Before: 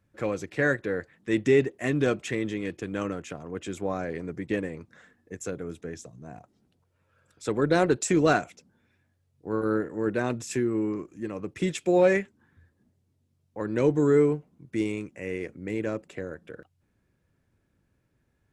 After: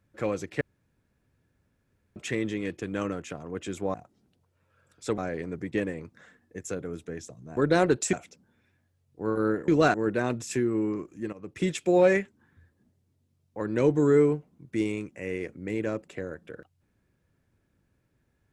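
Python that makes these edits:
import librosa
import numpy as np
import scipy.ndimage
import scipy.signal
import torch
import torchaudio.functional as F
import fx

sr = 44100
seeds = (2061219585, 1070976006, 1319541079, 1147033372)

y = fx.edit(x, sr, fx.room_tone_fill(start_s=0.61, length_s=1.55),
    fx.move(start_s=6.33, length_s=1.24, to_s=3.94),
    fx.move(start_s=8.13, length_s=0.26, to_s=9.94),
    fx.fade_in_from(start_s=11.33, length_s=0.29, floor_db=-16.0), tone=tone)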